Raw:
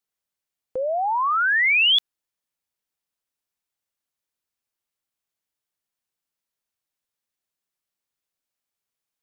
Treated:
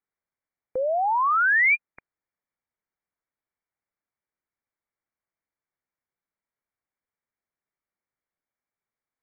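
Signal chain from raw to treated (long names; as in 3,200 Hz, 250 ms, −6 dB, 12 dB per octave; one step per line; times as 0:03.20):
linear-phase brick-wall low-pass 2,400 Hz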